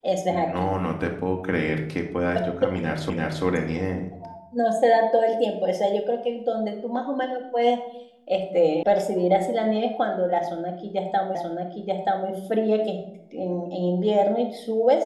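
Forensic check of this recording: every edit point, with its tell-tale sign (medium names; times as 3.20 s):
3.10 s: repeat of the last 0.34 s
8.83 s: sound stops dead
11.35 s: repeat of the last 0.93 s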